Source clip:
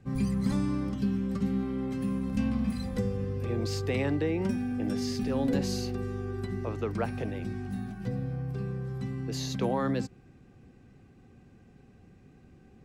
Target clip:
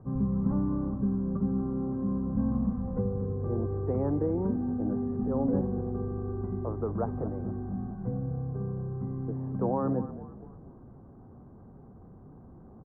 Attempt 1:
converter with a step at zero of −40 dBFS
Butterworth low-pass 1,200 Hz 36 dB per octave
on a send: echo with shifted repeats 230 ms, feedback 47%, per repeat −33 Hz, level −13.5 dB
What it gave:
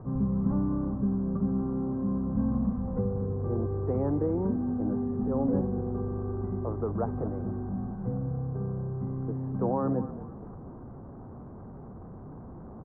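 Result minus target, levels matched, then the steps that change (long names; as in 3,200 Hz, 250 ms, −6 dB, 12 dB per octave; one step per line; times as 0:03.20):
converter with a step at zero: distortion +10 dB
change: converter with a step at zero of −50.5 dBFS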